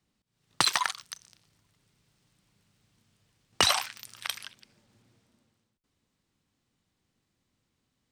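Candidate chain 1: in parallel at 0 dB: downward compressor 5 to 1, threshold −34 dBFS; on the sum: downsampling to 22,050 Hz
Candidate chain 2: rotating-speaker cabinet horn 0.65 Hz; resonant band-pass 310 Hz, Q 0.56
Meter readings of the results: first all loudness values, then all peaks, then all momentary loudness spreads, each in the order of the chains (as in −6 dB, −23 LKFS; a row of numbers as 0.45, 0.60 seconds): −26.5, −43.5 LKFS; −2.5, −17.5 dBFS; 18, 21 LU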